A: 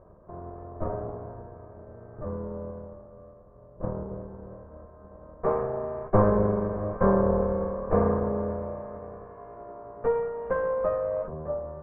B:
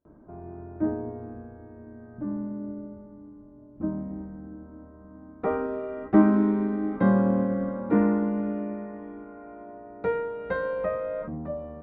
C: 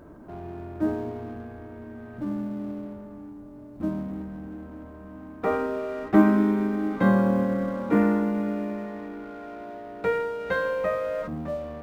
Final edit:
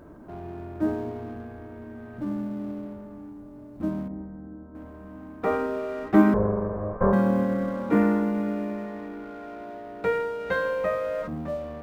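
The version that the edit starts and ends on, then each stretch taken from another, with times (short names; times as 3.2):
C
4.08–4.75 from B
6.34–7.13 from A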